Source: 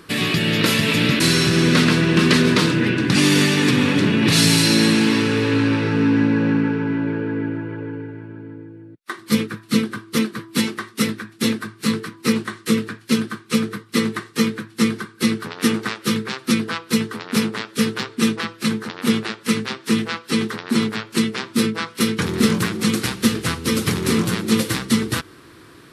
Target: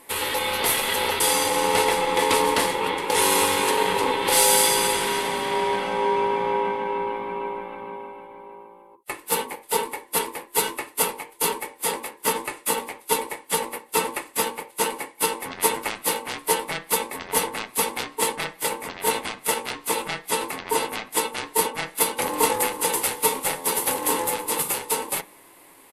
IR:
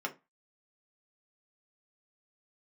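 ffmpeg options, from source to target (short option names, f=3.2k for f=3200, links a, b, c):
-filter_complex "[0:a]dynaudnorm=f=220:g=21:m=5.5dB,aexciter=amount=3.5:drive=9.3:freq=7.9k,asplit=2[a][b];[1:a]atrim=start_sample=2205,atrim=end_sample=3969[c];[b][c]afir=irnorm=-1:irlink=0,volume=-3dB[d];[a][d]amix=inputs=2:normalize=0,aresample=32000,aresample=44100,aeval=exprs='val(0)*sin(2*PI*680*n/s)':c=same,volume=-7.5dB"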